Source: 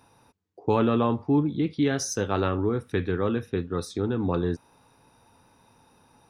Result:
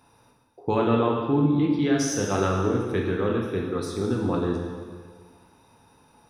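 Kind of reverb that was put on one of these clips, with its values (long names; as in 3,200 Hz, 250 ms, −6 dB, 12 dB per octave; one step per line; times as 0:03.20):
dense smooth reverb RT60 1.7 s, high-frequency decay 0.9×, DRR −0.5 dB
level −1.5 dB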